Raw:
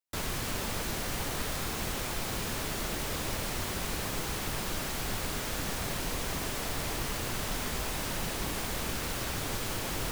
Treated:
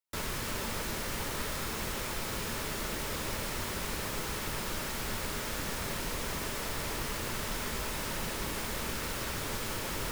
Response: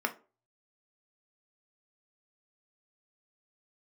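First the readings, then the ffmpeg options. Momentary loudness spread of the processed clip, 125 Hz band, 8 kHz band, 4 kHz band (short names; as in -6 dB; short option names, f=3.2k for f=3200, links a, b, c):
0 LU, -3.0 dB, -2.0 dB, -1.5 dB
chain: -filter_complex "[0:a]bandreject=f=750:w=12,asplit=2[a][b];[1:a]atrim=start_sample=2205[c];[b][c]afir=irnorm=-1:irlink=0,volume=-16.5dB[d];[a][d]amix=inputs=2:normalize=0,volume=-2.5dB"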